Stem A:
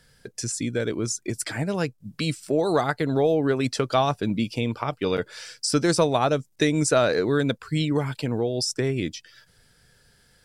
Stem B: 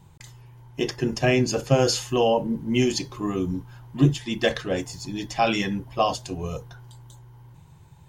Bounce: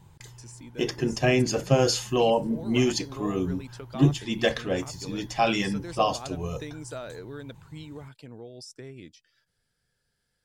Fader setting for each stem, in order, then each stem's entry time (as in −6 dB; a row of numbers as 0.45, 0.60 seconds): −18.0, −1.5 decibels; 0.00, 0.00 seconds